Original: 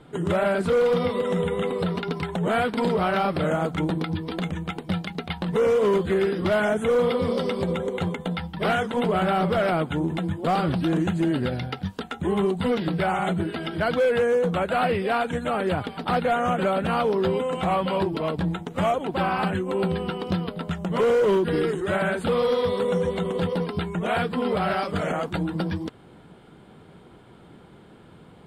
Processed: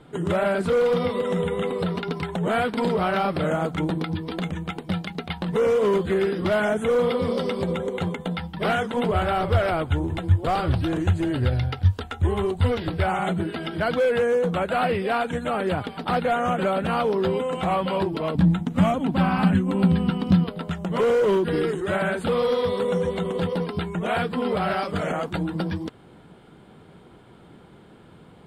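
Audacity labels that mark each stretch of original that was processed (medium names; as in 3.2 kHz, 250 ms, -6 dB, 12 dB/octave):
9.110000	13.060000	resonant low shelf 130 Hz +10 dB, Q 3
18.350000	20.440000	resonant low shelf 310 Hz +6 dB, Q 3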